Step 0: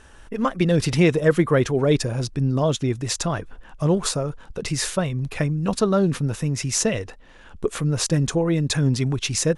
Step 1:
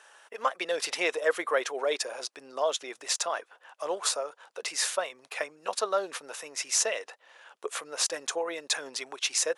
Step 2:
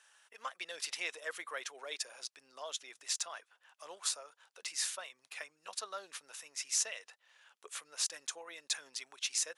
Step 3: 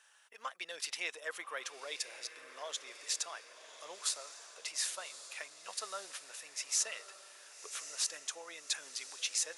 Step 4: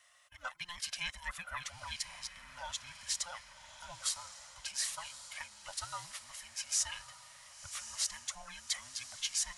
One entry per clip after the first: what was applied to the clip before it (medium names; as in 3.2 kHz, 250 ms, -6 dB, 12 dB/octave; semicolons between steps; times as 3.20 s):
high-pass 550 Hz 24 dB/octave; trim -2.5 dB
amplifier tone stack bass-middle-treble 5-5-5
echo that smears into a reverb 1118 ms, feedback 54%, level -11.5 dB
every band turned upside down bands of 500 Hz